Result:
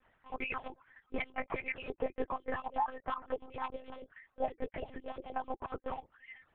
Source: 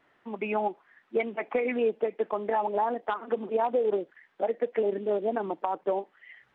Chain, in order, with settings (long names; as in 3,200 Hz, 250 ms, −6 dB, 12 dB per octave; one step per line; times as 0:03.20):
harmonic-percussive split with one part muted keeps percussive
0:03.24–0:05.51: dynamic equaliser 1,500 Hz, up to −8 dB, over −52 dBFS, Q 1.4
brickwall limiter −25 dBFS, peak gain reduction 9.5 dB
high-frequency loss of the air 93 metres
one-pitch LPC vocoder at 8 kHz 260 Hz
level +1.5 dB